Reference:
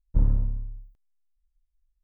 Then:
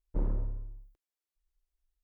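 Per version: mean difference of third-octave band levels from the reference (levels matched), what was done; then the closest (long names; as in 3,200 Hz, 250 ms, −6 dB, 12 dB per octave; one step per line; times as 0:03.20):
4.0 dB: low shelf with overshoot 270 Hz −7 dB, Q 3
asymmetric clip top −24.5 dBFS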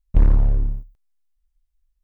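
6.5 dB: parametric band 260 Hz −7 dB 1.1 octaves
in parallel at −8 dB: fuzz pedal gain 32 dB, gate −41 dBFS
on the sum: level +3.5 dB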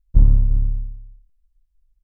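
3.0 dB: low-shelf EQ 220 Hz +9.5 dB
slap from a distant wall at 59 metres, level −12 dB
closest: third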